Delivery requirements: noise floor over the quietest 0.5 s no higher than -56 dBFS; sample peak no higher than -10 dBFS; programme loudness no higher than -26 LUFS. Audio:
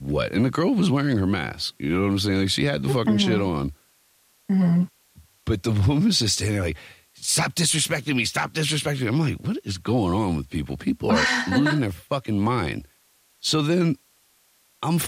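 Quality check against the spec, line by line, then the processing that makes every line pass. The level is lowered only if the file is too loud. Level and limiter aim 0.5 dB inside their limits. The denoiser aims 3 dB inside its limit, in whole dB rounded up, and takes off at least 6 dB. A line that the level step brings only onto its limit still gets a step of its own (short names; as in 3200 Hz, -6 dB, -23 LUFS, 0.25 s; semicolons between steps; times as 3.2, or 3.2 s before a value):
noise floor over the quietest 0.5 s -62 dBFS: OK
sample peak -8.5 dBFS: fail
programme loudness -23.0 LUFS: fail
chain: gain -3.5 dB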